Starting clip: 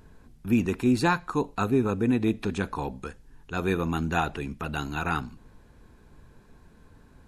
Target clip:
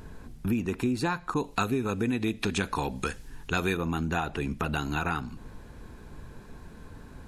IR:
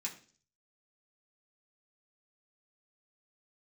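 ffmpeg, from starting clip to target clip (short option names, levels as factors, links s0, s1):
-filter_complex "[0:a]acompressor=threshold=0.02:ratio=6,asettb=1/sr,asplit=3[s0][s1][s2];[s0]atrim=end=1.344[s3];[s1]atrim=start=1.34:end=3.77,asetpts=PTS-STARTPTS,afade=t=in:d=0.004:c=qsin,afade=t=out:st=2.426:d=0.004:c=qsin,adynamicequalizer=threshold=0.002:dfrequency=1600:dqfactor=0.7:tfrequency=1600:tqfactor=0.7:attack=5:release=100:ratio=0.375:range=4:mode=boostabove:tftype=highshelf[s4];[s2]atrim=start=3.766[s5];[s3][s4]acrossfade=d=0.004:c1=hsin:c2=qsin[s6];[s6][s5]acrossfade=d=0.004:c1=qsin:c2=hsin,volume=2.51"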